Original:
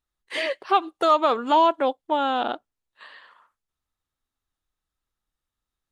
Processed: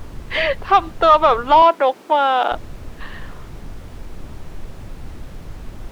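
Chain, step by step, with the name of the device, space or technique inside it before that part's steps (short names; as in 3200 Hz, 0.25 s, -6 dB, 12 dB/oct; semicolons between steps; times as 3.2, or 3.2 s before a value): aircraft cabin announcement (BPF 470–3300 Hz; soft clip -11 dBFS, distortion -20 dB; brown noise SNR 11 dB); 1.62–2.52 HPF 250 Hz 24 dB/oct; gain +9 dB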